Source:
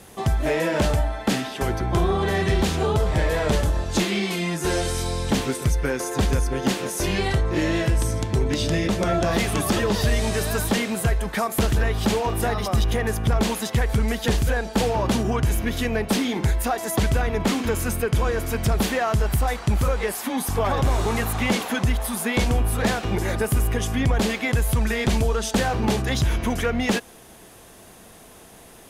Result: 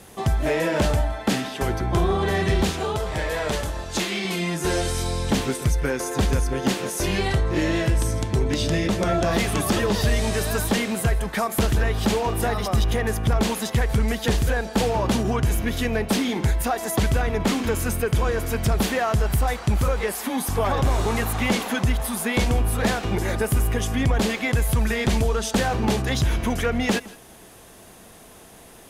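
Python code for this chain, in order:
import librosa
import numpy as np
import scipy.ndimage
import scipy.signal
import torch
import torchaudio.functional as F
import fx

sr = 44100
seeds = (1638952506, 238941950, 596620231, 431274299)

y = fx.low_shelf(x, sr, hz=410.0, db=-8.0, at=(2.71, 4.25))
y = y + 10.0 ** (-20.5 / 20.0) * np.pad(y, (int(162 * sr / 1000.0), 0))[:len(y)]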